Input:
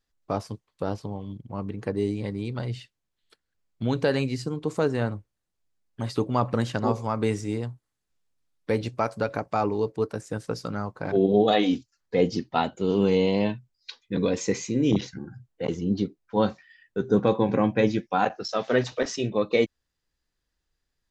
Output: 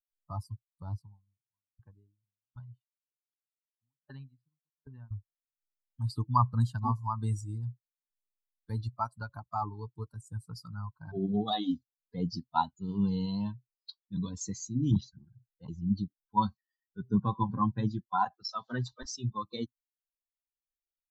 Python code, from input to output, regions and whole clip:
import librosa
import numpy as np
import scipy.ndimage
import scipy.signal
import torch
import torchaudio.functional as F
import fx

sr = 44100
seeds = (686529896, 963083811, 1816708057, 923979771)

y = fx.chain(x, sr, fx.lowpass(hz=3300.0, slope=24),
    fx.low_shelf(hz=450.0, db=-3.0),
    fx.tremolo_decay(direction='decaying', hz=1.3, depth_db=38), at=(1.02, 5.11))
y = fx.bin_expand(y, sr, power=2.0)
y = fx.curve_eq(y, sr, hz=(120.0, 250.0, 540.0, 1000.0, 2400.0, 3700.0), db=(0, -8, -26, 4, -29, -6))
y = y * 10.0 ** (5.0 / 20.0)